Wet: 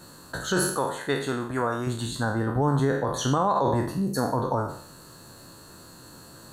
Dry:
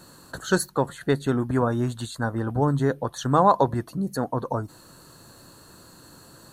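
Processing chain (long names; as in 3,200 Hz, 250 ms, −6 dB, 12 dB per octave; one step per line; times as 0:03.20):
peak hold with a decay on every bin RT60 0.60 s
0:00.77–0:01.87: low-shelf EQ 430 Hz −10 dB
brickwall limiter −13.5 dBFS, peak gain reduction 10 dB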